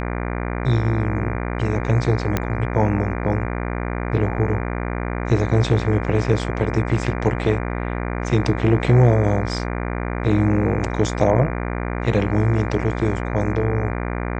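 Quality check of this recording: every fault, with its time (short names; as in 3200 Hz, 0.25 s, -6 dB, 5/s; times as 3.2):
buzz 60 Hz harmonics 40 -25 dBFS
2.37 pop -6 dBFS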